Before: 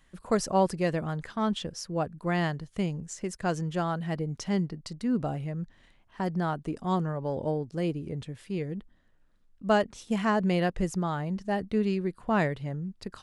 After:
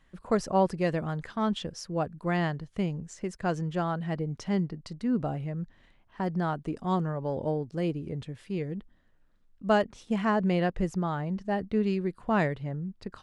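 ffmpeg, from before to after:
-af "asetnsamples=n=441:p=0,asendcmd='0.8 lowpass f 6100;2.37 lowpass f 3400;6.33 lowpass f 5500;9.85 lowpass f 3100;11.86 lowpass f 6400;12.54 lowpass f 2600',lowpass=f=3.1k:p=1"

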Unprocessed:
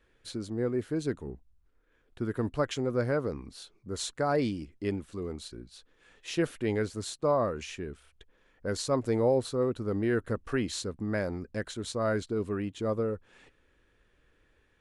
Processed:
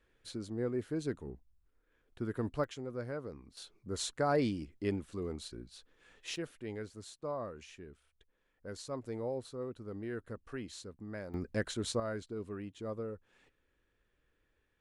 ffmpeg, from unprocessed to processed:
-af "asetnsamples=n=441:p=0,asendcmd='2.64 volume volume -11.5dB;3.57 volume volume -2.5dB;6.36 volume volume -12.5dB;11.34 volume volume 0dB;12 volume volume -10dB',volume=-5dB"

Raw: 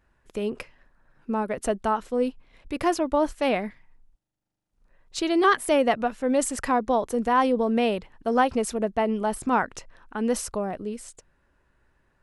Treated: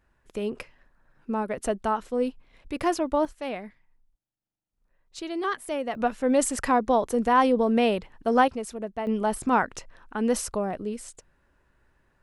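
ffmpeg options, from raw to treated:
-af "asetnsamples=n=441:p=0,asendcmd='3.25 volume volume -9dB;5.95 volume volume 1dB;8.48 volume volume -7.5dB;9.07 volume volume 0.5dB',volume=-1.5dB"

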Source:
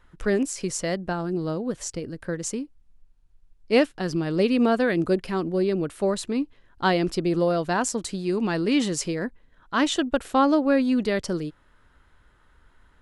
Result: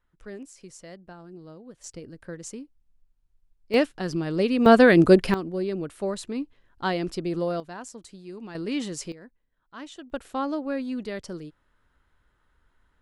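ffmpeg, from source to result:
-af "asetnsamples=n=441:p=0,asendcmd='1.84 volume volume -8.5dB;3.74 volume volume -2dB;4.66 volume volume 7.5dB;5.34 volume volume -5dB;7.6 volume volume -15dB;8.55 volume volume -7dB;9.12 volume volume -18.5dB;10.1 volume volume -9dB',volume=-17dB"

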